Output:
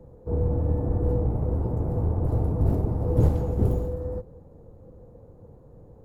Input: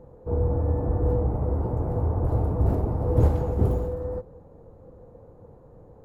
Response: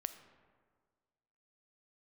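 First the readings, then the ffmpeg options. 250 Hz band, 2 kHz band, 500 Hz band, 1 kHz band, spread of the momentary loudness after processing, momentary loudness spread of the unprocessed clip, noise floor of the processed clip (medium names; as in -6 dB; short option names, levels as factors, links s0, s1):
+0.5 dB, no reading, -2.0 dB, -4.0 dB, 8 LU, 8 LU, -50 dBFS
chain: -filter_complex "[0:a]equalizer=f=1200:w=0.43:g=-7,acrossover=split=110|730[s0][s1][s2];[s0]aeval=exprs='clip(val(0),-1,0.0224)':c=same[s3];[s3][s1][s2]amix=inputs=3:normalize=0,volume=1.26"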